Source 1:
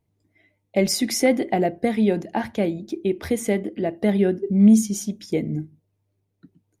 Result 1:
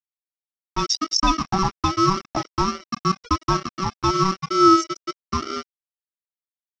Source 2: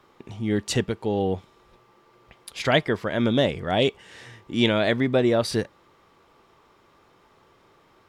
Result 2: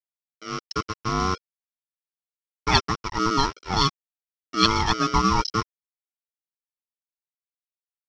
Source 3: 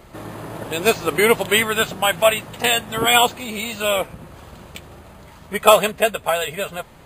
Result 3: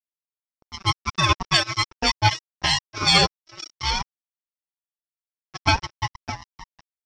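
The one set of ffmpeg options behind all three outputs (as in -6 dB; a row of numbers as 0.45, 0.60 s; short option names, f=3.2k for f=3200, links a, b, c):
-af "afftfilt=real='real(if(between(b,1,1008),(2*floor((b-1)/48)+1)*48-b,b),0)':imag='imag(if(between(b,1,1008),(2*floor((b-1)/48)+1)*48-b,b),0)*if(between(b,1,1008),-1,1)':win_size=2048:overlap=0.75,aeval=exprs='val(0)*sin(2*PI*480*n/s)':c=same,dynaudnorm=f=310:g=7:m=14dB,afftfilt=real='re*gte(hypot(re,im),0.141)':imag='im*gte(hypot(re,im),0.141)':win_size=1024:overlap=0.75,aeval=exprs='sgn(val(0))*max(abs(val(0))-0.0355,0)':c=same,lowpass=f=5.5k:t=q:w=14,volume=-2.5dB"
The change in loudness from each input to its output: +0.5, 0.0, -3.5 LU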